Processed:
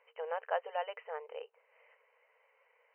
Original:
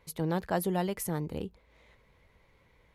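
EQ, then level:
linear-phase brick-wall band-pass 430–3,100 Hz
−2.0 dB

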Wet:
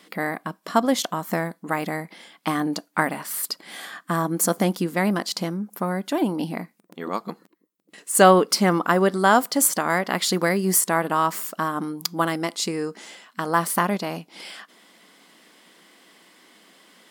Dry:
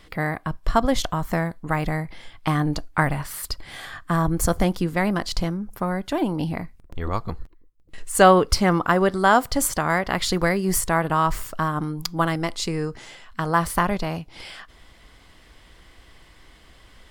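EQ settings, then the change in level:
linear-phase brick-wall high-pass 170 Hz
low-shelf EQ 320 Hz +4 dB
high-shelf EQ 6,800 Hz +8.5 dB
−1.0 dB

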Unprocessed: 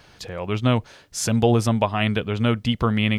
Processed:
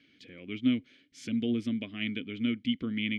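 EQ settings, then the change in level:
formant filter i
+1.5 dB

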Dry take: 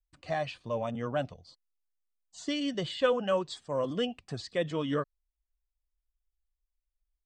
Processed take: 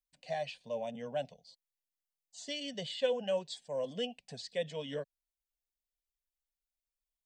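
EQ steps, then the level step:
spectral tilt +2.5 dB per octave
high-shelf EQ 3,800 Hz −8.5 dB
phaser with its sweep stopped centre 330 Hz, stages 6
−1.5 dB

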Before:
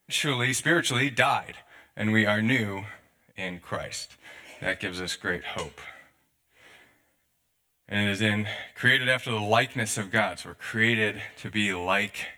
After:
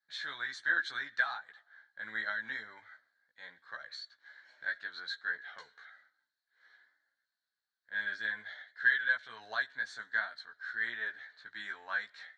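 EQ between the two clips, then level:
pair of resonant band-passes 2,600 Hz, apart 1.4 octaves
high-frequency loss of the air 110 metres
0.0 dB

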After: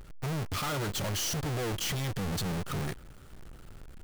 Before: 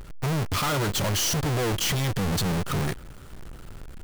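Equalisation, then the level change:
notch filter 1,000 Hz, Q 25
−7.0 dB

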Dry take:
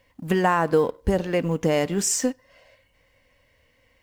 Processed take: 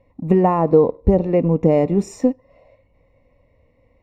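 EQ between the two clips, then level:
moving average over 28 samples
+8.0 dB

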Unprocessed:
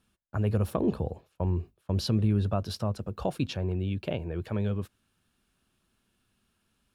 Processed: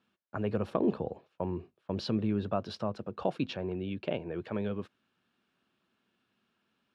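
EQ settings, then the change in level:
band-pass filter 200–3,600 Hz
0.0 dB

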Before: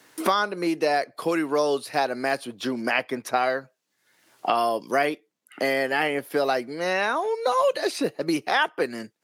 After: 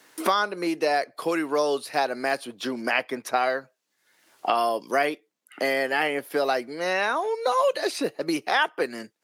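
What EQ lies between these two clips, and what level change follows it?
high-pass filter 240 Hz 6 dB per octave
0.0 dB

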